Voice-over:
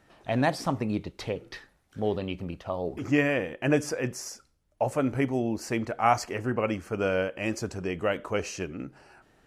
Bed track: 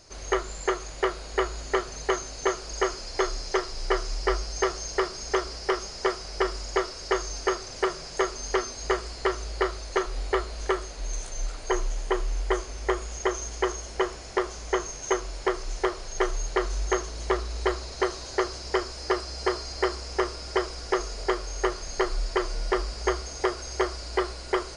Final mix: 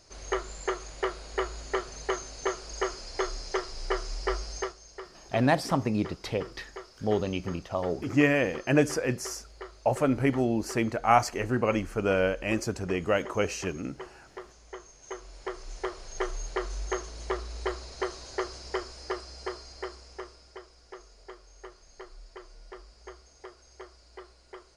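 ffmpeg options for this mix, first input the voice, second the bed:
ffmpeg -i stem1.wav -i stem2.wav -filter_complex "[0:a]adelay=5050,volume=1.5dB[link_01];[1:a]volume=6.5dB,afade=type=out:start_time=4.55:duration=0.2:silence=0.237137,afade=type=in:start_time=14.95:duration=1.19:silence=0.281838,afade=type=out:start_time=18.62:duration=1.98:silence=0.188365[link_02];[link_01][link_02]amix=inputs=2:normalize=0" out.wav

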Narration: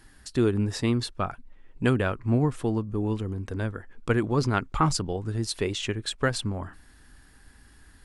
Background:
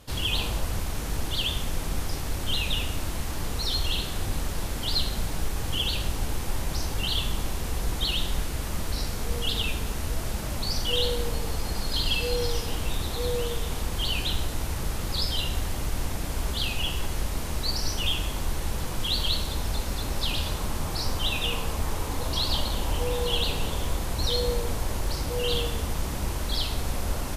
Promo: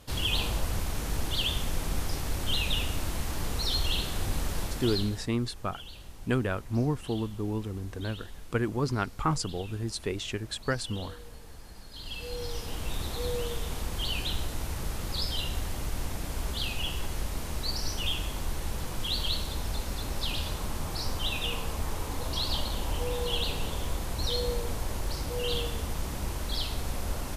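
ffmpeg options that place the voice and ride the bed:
ffmpeg -i stem1.wav -i stem2.wav -filter_complex "[0:a]adelay=4450,volume=-4.5dB[link_01];[1:a]volume=13dB,afade=type=out:start_time=4.59:duration=0.67:silence=0.141254,afade=type=in:start_time=11.92:duration=1.1:silence=0.188365[link_02];[link_01][link_02]amix=inputs=2:normalize=0" out.wav

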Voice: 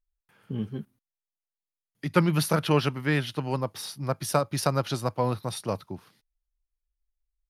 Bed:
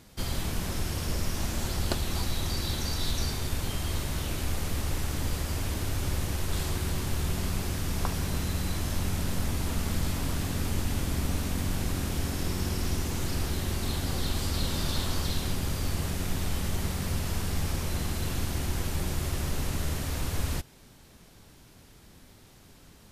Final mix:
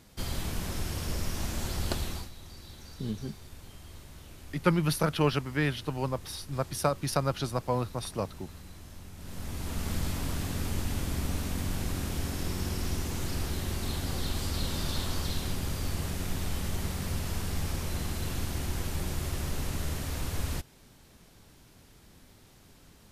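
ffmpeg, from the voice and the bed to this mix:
ffmpeg -i stem1.wav -i stem2.wav -filter_complex "[0:a]adelay=2500,volume=-3dB[link_01];[1:a]volume=12dB,afade=type=out:start_time=2.03:duration=0.27:silence=0.188365,afade=type=in:start_time=9.16:duration=0.76:silence=0.188365[link_02];[link_01][link_02]amix=inputs=2:normalize=0" out.wav

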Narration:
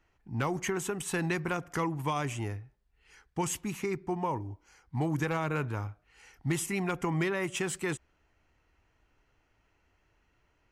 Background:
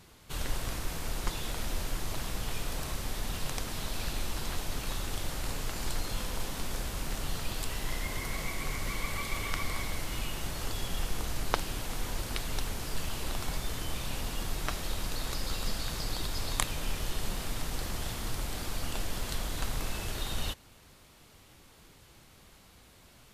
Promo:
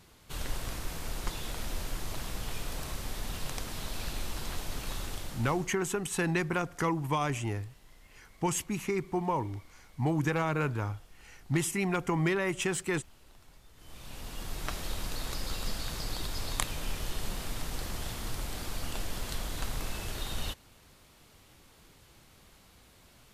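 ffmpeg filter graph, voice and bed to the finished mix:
ffmpeg -i stem1.wav -i stem2.wav -filter_complex "[0:a]adelay=5050,volume=1.5dB[link_01];[1:a]volume=20dB,afade=type=out:start_time=5.03:duration=0.73:silence=0.0841395,afade=type=in:start_time=13.75:duration=1.03:silence=0.0794328[link_02];[link_01][link_02]amix=inputs=2:normalize=0" out.wav

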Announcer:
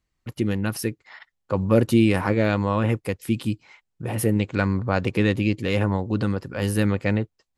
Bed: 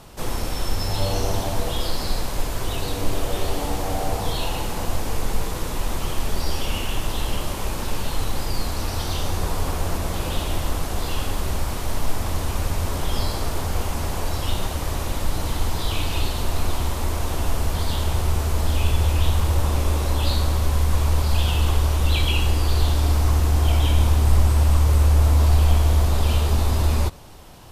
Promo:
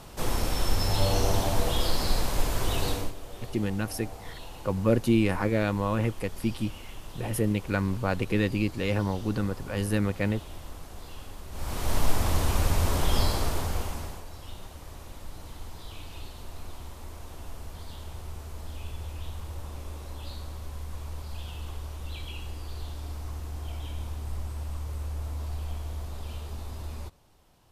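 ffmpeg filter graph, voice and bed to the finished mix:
ffmpeg -i stem1.wav -i stem2.wav -filter_complex "[0:a]adelay=3150,volume=-5dB[link_01];[1:a]volume=15.5dB,afade=type=out:start_time=2.89:duration=0.24:silence=0.158489,afade=type=in:start_time=11.51:duration=0.46:silence=0.141254,afade=type=out:start_time=13.21:duration=1.03:silence=0.133352[link_02];[link_01][link_02]amix=inputs=2:normalize=0" out.wav

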